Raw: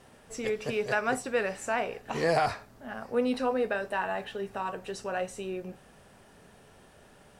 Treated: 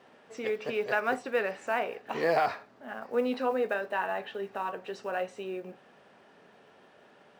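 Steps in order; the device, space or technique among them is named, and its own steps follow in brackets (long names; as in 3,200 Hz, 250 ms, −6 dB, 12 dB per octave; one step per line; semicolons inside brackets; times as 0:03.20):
early digital voice recorder (band-pass filter 250–3,700 Hz; one scale factor per block 7 bits)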